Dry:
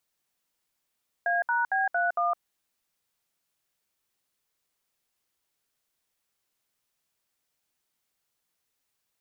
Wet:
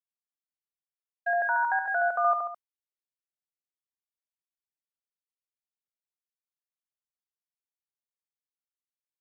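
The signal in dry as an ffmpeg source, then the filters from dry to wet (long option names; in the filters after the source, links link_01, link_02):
-f lavfi -i "aevalsrc='0.0531*clip(min(mod(t,0.228),0.162-mod(t,0.228))/0.002,0,1)*(eq(floor(t/0.228),0)*(sin(2*PI*697*mod(t,0.228))+sin(2*PI*1633*mod(t,0.228)))+eq(floor(t/0.228),1)*(sin(2*PI*941*mod(t,0.228))+sin(2*PI*1477*mod(t,0.228)))+eq(floor(t/0.228),2)*(sin(2*PI*770*mod(t,0.228))+sin(2*PI*1633*mod(t,0.228)))+eq(floor(t/0.228),3)*(sin(2*PI*697*mod(t,0.228))+sin(2*PI*1477*mod(t,0.228)))+eq(floor(t/0.228),4)*(sin(2*PI*697*mod(t,0.228))+sin(2*PI*1209*mod(t,0.228))))':duration=1.14:sample_rate=44100"
-filter_complex "[0:a]asplit=2[link_01][link_02];[link_02]aecho=0:1:72:0.668[link_03];[link_01][link_03]amix=inputs=2:normalize=0,agate=range=-33dB:threshold=-27dB:ratio=3:detection=peak,asplit=2[link_04][link_05];[link_05]aecho=0:1:140:0.335[link_06];[link_04][link_06]amix=inputs=2:normalize=0"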